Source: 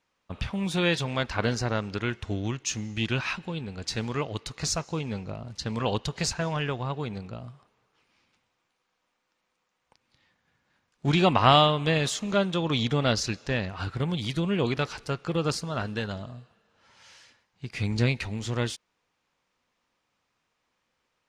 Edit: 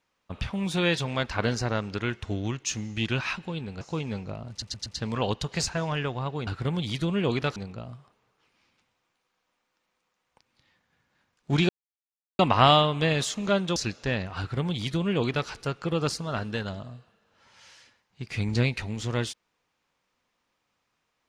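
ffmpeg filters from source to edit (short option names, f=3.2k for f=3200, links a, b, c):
-filter_complex "[0:a]asplit=9[a][b][c][d][e][f][g][h][i];[a]atrim=end=3.812[j];[b]atrim=start=4.808:end=5.622[k];[c]atrim=start=5.498:end=5.622[l];[d]atrim=start=5.498:end=5.622[m];[e]atrim=start=5.498:end=7.112[n];[f]atrim=start=13.818:end=14.912[o];[g]atrim=start=7.108:end=11.24,asetpts=PTS-STARTPTS,afade=t=out:st=4.128:d=0.004:c=hsin,apad=pad_dur=0.7[p];[h]atrim=start=11.24:end=12.612,asetpts=PTS-STARTPTS,afade=t=in:d=0.004:c=hsin[q];[i]atrim=start=13.188[r];[j][k]acrossfade=d=0.004:c1=hsin:c2=hsin[s];[s][l]acrossfade=d=0.004:c1=hsin:c2=hsin[t];[t][m]acrossfade=d=0.004:c1=hsin:c2=hsin[u];[u][n]acrossfade=d=0.004:c1=hsin:c2=hsin[v];[v][o]acrossfade=d=0.004:c1=hsin:c2=hsin[w];[p][q]concat=n=2:v=0:a=1[x];[w][x]acrossfade=d=0.004:c1=hsin:c2=hsin[y];[y][r]acrossfade=d=0.004:c1=hsin:c2=hsin"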